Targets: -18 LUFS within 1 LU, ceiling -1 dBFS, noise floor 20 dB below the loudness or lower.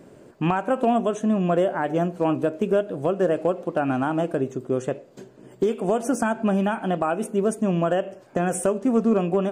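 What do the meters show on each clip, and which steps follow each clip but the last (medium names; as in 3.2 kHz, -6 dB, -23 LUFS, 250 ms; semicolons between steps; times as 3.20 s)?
loudness -24.0 LUFS; peak level -11.0 dBFS; loudness target -18.0 LUFS
-> trim +6 dB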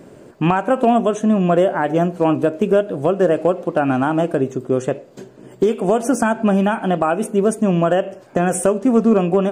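loudness -18.0 LUFS; peak level -5.0 dBFS; noise floor -43 dBFS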